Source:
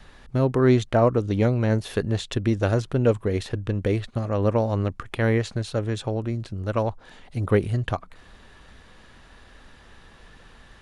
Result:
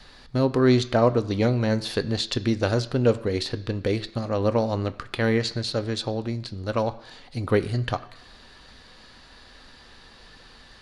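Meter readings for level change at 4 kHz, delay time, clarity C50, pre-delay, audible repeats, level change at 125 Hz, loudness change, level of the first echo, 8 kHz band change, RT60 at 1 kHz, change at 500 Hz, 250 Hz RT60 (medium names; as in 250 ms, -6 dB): +7.5 dB, no echo, 17.0 dB, 3 ms, no echo, -3.0 dB, -0.5 dB, no echo, +2.5 dB, 1.0 s, 0.0 dB, 0.95 s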